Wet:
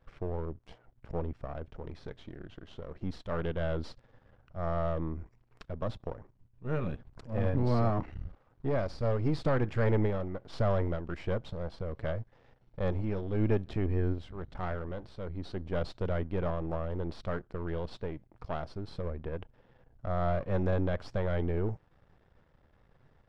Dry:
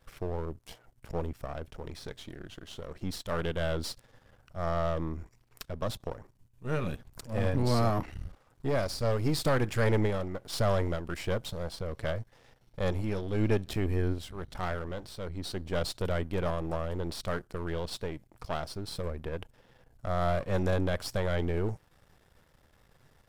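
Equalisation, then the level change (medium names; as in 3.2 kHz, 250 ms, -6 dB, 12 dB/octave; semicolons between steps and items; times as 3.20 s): tape spacing loss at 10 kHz 28 dB; 0.0 dB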